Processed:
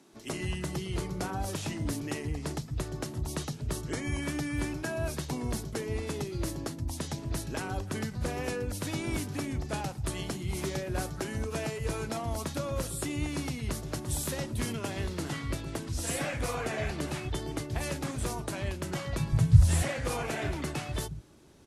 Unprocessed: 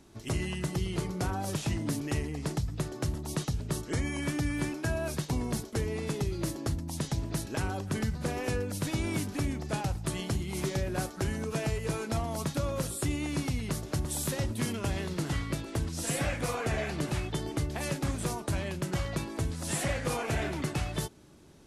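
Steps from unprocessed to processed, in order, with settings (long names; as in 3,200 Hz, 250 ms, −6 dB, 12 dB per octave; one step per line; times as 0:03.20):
harmonic generator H 3 −27 dB, 5 −37 dB, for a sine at −20.5 dBFS
0:19.19–0:19.69: low shelf with overshoot 200 Hz +13.5 dB, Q 3
multiband delay without the direct sound highs, lows 130 ms, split 150 Hz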